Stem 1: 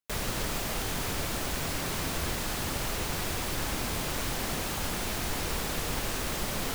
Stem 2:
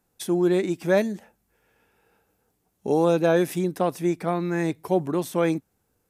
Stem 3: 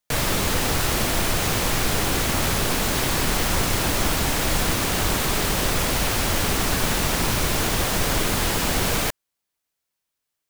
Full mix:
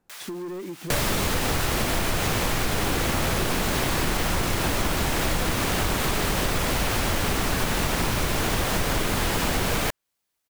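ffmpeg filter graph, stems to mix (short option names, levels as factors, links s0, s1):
-filter_complex "[0:a]highpass=1200,volume=0.596[s0];[1:a]lowpass=f=2600:p=1,volume=1.19[s1];[2:a]adynamicequalizer=threshold=0.0126:dfrequency=3500:dqfactor=0.7:tfrequency=3500:tqfactor=0.7:attack=5:release=100:ratio=0.375:range=2:mode=cutabove:tftype=highshelf,adelay=800,volume=1.33[s2];[s0][s1]amix=inputs=2:normalize=0,asoftclip=type=tanh:threshold=0.0891,acompressor=threshold=0.0251:ratio=10,volume=1[s3];[s2][s3]amix=inputs=2:normalize=0,acompressor=threshold=0.1:ratio=6"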